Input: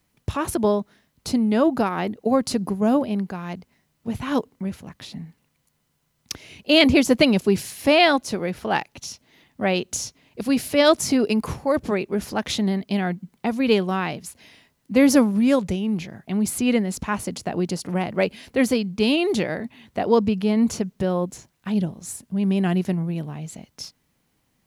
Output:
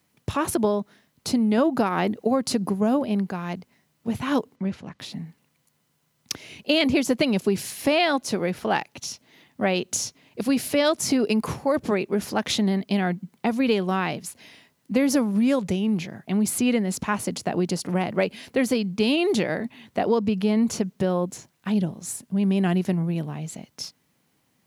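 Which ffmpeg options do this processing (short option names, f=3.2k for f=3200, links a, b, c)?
-filter_complex "[0:a]asplit=3[a][b][c];[a]afade=t=out:st=4.55:d=0.02[d];[b]lowpass=5.2k,afade=t=in:st=4.55:d=0.02,afade=t=out:st=4.98:d=0.02[e];[c]afade=t=in:st=4.98:d=0.02[f];[d][e][f]amix=inputs=3:normalize=0,asplit=3[g][h][i];[g]atrim=end=1.582[j];[h]atrim=start=1.578:end=2.252,asetpts=PTS-STARTPTS,volume=3.5dB[k];[i]atrim=start=2.248[l];[j][k]acrossfade=d=0.004:c1=hsin:c2=hsin[m];[m][l]acrossfade=d=0.004:c1=hsin:c2=hsin,highpass=110,acompressor=threshold=-19dB:ratio=6,volume=1.5dB"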